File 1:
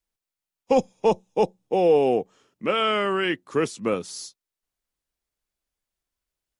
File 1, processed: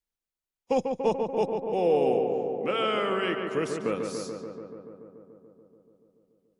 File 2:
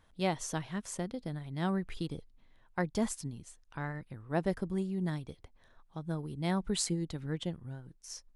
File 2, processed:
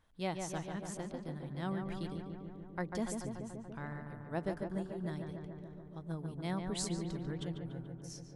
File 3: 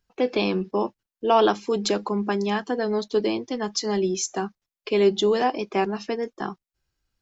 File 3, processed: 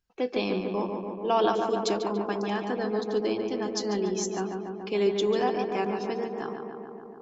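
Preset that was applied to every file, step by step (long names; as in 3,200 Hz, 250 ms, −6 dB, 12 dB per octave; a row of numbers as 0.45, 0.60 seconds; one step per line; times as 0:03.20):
feedback echo with a low-pass in the loop 144 ms, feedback 79%, low-pass 2,400 Hz, level −5 dB
level −6 dB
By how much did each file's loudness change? −4.0, −4.5, −4.0 LU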